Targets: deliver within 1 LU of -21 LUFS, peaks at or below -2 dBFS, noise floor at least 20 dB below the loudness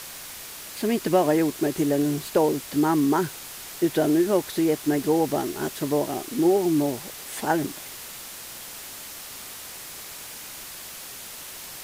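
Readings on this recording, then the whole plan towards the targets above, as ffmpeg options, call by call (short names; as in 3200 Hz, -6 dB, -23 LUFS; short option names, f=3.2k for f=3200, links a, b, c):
noise floor -40 dBFS; noise floor target -44 dBFS; loudness -24.0 LUFS; peak -9.0 dBFS; loudness target -21.0 LUFS
-> -af "afftdn=nr=6:nf=-40"
-af "volume=3dB"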